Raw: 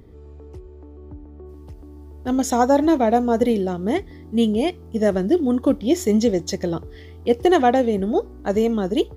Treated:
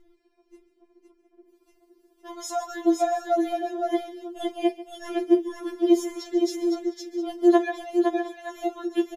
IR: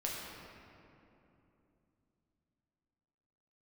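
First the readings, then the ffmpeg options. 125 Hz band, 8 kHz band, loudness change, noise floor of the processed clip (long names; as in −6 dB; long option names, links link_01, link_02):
below −35 dB, −7.0 dB, −5.5 dB, −67 dBFS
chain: -filter_complex "[0:a]acrossover=split=290[link_01][link_02];[link_01]volume=21dB,asoftclip=hard,volume=-21dB[link_03];[link_03][link_02]amix=inputs=2:normalize=0,aecho=1:1:41|142|512|656|708:0.126|0.141|0.596|0.1|0.119,afftfilt=real='re*4*eq(mod(b,16),0)':imag='im*4*eq(mod(b,16),0)':win_size=2048:overlap=0.75,volume=-5dB"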